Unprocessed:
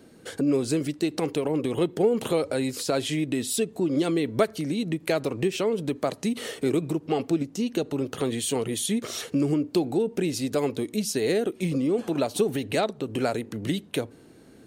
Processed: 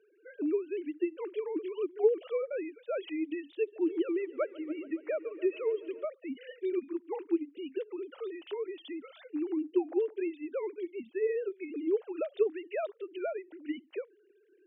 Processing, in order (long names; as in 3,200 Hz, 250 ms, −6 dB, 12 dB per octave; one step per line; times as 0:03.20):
three sine waves on the formant tracks
high-pass filter 250 Hz
0:03.52–0:06.05: echo machine with several playback heads 141 ms, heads first and second, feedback 66%, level −22 dB
level −7 dB